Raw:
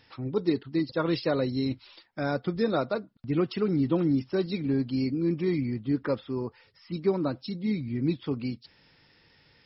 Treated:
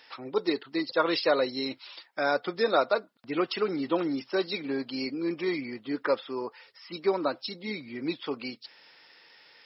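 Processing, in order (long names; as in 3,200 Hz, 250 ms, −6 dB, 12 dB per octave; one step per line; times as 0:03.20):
high-pass filter 550 Hz 12 dB per octave
level +6.5 dB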